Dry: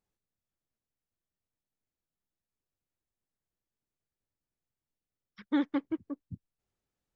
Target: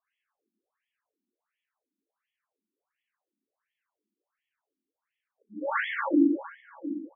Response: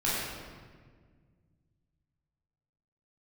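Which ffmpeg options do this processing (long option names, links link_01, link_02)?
-filter_complex "[0:a]highpass=48,acrossover=split=520[link_01][link_02];[link_01]adelay=110[link_03];[link_03][link_02]amix=inputs=2:normalize=0,asplit=2[link_04][link_05];[link_05]acrusher=bits=4:mix=0:aa=0.5,volume=-6.5dB[link_06];[link_04][link_06]amix=inputs=2:normalize=0,asubboost=boost=12:cutoff=68,acrossover=split=250|1000[link_07][link_08][link_09];[link_07]asoftclip=type=tanh:threshold=-38dB[link_10];[link_10][link_08][link_09]amix=inputs=3:normalize=0[link_11];[1:a]atrim=start_sample=2205,asetrate=29988,aresample=44100[link_12];[link_11][link_12]afir=irnorm=-1:irlink=0,afftfilt=real='re*between(b*sr/1024,260*pow(2500/260,0.5+0.5*sin(2*PI*1.4*pts/sr))/1.41,260*pow(2500/260,0.5+0.5*sin(2*PI*1.4*pts/sr))*1.41)':imag='im*between(b*sr/1024,260*pow(2500/260,0.5+0.5*sin(2*PI*1.4*pts/sr))/1.41,260*pow(2500/260,0.5+0.5*sin(2*PI*1.4*pts/sr))*1.41)':win_size=1024:overlap=0.75,volume=5dB"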